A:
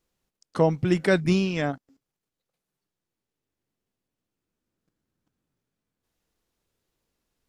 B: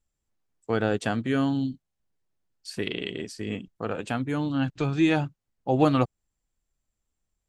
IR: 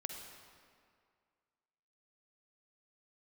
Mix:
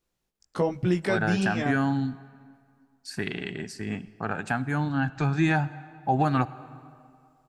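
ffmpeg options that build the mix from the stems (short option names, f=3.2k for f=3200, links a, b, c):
-filter_complex "[0:a]flanger=delay=15.5:depth=3.6:speed=1.3,volume=1dB,asplit=2[a][b];[b]volume=-20.5dB[c];[1:a]equalizer=f=160:t=o:w=0.33:g=6,equalizer=f=315:t=o:w=0.33:g=-4,equalizer=f=500:t=o:w=0.33:g=-11,equalizer=f=800:t=o:w=0.33:g=8,equalizer=f=1.6k:t=o:w=0.33:g=10,equalizer=f=3.15k:t=o:w=0.33:g=-9,adelay=400,volume=-1.5dB,asplit=2[d][e];[e]volume=-9.5dB[f];[2:a]atrim=start_sample=2205[g];[c][f]amix=inputs=2:normalize=0[h];[h][g]afir=irnorm=-1:irlink=0[i];[a][d][i]amix=inputs=3:normalize=0,alimiter=limit=-14dB:level=0:latency=1:release=194"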